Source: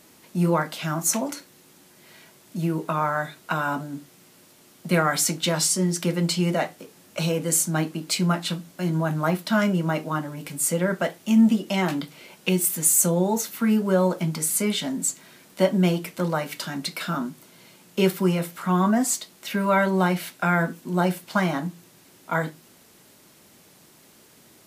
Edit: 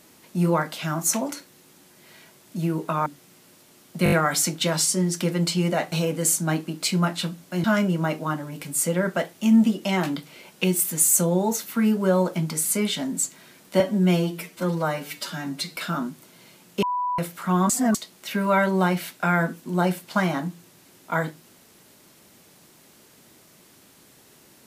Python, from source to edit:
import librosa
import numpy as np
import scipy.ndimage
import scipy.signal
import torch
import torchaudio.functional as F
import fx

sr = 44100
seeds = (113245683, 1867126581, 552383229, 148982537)

y = fx.edit(x, sr, fx.cut(start_s=3.06, length_s=0.9),
    fx.stutter(start_s=4.94, slice_s=0.02, count=5),
    fx.cut(start_s=6.74, length_s=0.45),
    fx.cut(start_s=8.91, length_s=0.58),
    fx.stretch_span(start_s=15.65, length_s=1.31, factor=1.5),
    fx.bleep(start_s=18.02, length_s=0.36, hz=989.0, db=-22.5),
    fx.reverse_span(start_s=18.89, length_s=0.25), tone=tone)